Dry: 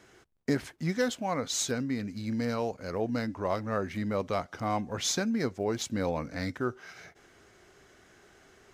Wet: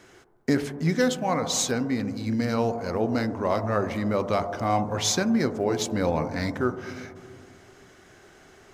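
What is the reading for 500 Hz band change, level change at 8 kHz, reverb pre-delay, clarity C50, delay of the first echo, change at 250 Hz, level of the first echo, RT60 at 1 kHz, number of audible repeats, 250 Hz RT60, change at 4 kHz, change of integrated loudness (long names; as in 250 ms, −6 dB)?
+6.0 dB, +5.0 dB, 3 ms, 11.0 dB, no echo audible, +6.0 dB, no echo audible, 1.8 s, no echo audible, 2.5 s, +5.0 dB, +6.0 dB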